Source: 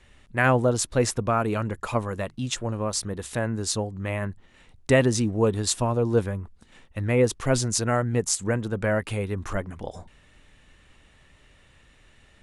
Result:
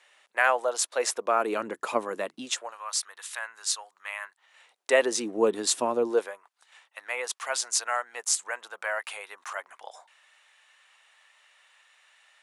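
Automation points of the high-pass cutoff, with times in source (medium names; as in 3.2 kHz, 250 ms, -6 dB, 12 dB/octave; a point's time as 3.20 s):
high-pass 24 dB/octave
0.88 s 590 Hz
1.61 s 280 Hz
2.39 s 280 Hz
2.79 s 1 kHz
4.23 s 1 kHz
5.39 s 270 Hz
6.02 s 270 Hz
6.42 s 770 Hz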